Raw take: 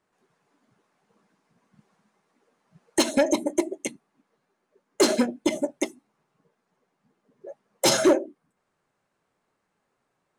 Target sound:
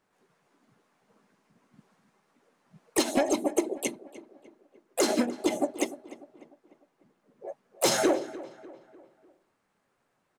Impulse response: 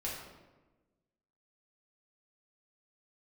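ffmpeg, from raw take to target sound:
-filter_complex "[0:a]acompressor=threshold=-22dB:ratio=5,asplit=3[link_01][link_02][link_03];[link_02]asetrate=52444,aresample=44100,atempo=0.840896,volume=-9dB[link_04];[link_03]asetrate=58866,aresample=44100,atempo=0.749154,volume=-9dB[link_05];[link_01][link_04][link_05]amix=inputs=3:normalize=0,asplit=2[link_06][link_07];[link_07]adelay=298,lowpass=frequency=2700:poles=1,volume=-16.5dB,asplit=2[link_08][link_09];[link_09]adelay=298,lowpass=frequency=2700:poles=1,volume=0.47,asplit=2[link_10][link_11];[link_11]adelay=298,lowpass=frequency=2700:poles=1,volume=0.47,asplit=2[link_12][link_13];[link_13]adelay=298,lowpass=frequency=2700:poles=1,volume=0.47[link_14];[link_08][link_10][link_12][link_14]amix=inputs=4:normalize=0[link_15];[link_06][link_15]amix=inputs=2:normalize=0"

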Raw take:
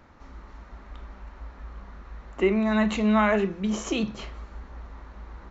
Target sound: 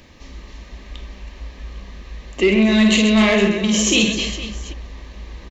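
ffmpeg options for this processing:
ffmpeg -i in.wav -filter_complex "[0:a]asuperstop=centerf=1400:order=4:qfactor=5,asplit=3[link_01][link_02][link_03];[link_01]afade=type=out:start_time=2.47:duration=0.02[link_04];[link_02]aecho=1:1:50|130|258|462.8|790.5:0.631|0.398|0.251|0.158|0.1,afade=type=in:start_time=2.47:duration=0.02,afade=type=out:start_time=4.72:duration=0.02[link_05];[link_03]afade=type=in:start_time=4.72:duration=0.02[link_06];[link_04][link_05][link_06]amix=inputs=3:normalize=0,asoftclip=type=tanh:threshold=-14.5dB,firequalizer=gain_entry='entry(540,0);entry(820,-8);entry(2800,10)':delay=0.05:min_phase=1,volume=7.5dB" out.wav

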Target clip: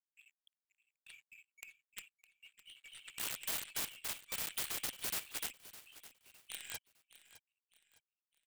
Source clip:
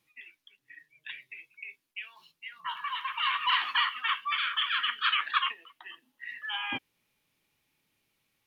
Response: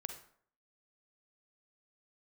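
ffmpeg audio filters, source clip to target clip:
-filter_complex "[0:a]highpass=54,aemphasis=mode=reproduction:type=50kf,afftfilt=real='re*(1-between(b*sr/4096,130,2200))':imag='im*(1-between(b*sr/4096,130,2200))':win_size=4096:overlap=0.75,highshelf=frequency=4700:gain=-4,aeval=exprs='sgn(val(0))*max(abs(val(0))-0.00141,0)':channel_layout=same,aeval=exprs='0.0891*(cos(1*acos(clip(val(0)/0.0891,-1,1)))-cos(1*PI/2))+0.00562*(cos(2*acos(clip(val(0)/0.0891,-1,1)))-cos(2*PI/2))+0.000631*(cos(5*acos(clip(val(0)/0.0891,-1,1)))-cos(5*PI/2))+0.0158*(cos(7*acos(clip(val(0)/0.0891,-1,1)))-cos(7*PI/2))':channel_layout=same,aeval=exprs='(mod(79.4*val(0)+1,2)-1)/79.4':channel_layout=same,asplit=2[link_01][link_02];[link_02]aecho=0:1:609|1218|1827:0.158|0.0555|0.0194[link_03];[link_01][link_03]amix=inputs=2:normalize=0,volume=9dB"

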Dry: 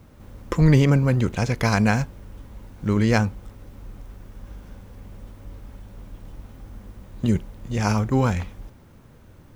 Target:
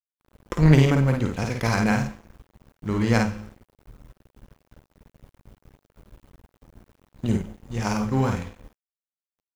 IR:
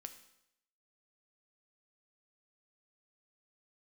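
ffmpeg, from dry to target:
-filter_complex "[0:a]aeval=exprs='0.631*(cos(1*acos(clip(val(0)/0.631,-1,1)))-cos(1*PI/2))+0.1*(cos(3*acos(clip(val(0)/0.631,-1,1)))-cos(3*PI/2))':channel_layout=same,asplit=2[link_01][link_02];[1:a]atrim=start_sample=2205,adelay=52[link_03];[link_02][link_03]afir=irnorm=-1:irlink=0,volume=2.5dB[link_04];[link_01][link_04]amix=inputs=2:normalize=0,aeval=exprs='sgn(val(0))*max(abs(val(0))-0.00794,0)':channel_layout=same,volume=1dB"

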